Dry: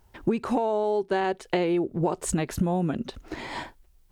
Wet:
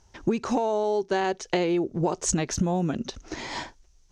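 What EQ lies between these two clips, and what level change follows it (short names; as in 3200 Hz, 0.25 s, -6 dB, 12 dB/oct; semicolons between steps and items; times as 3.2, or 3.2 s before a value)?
synth low-pass 6100 Hz, resonance Q 5.7; 0.0 dB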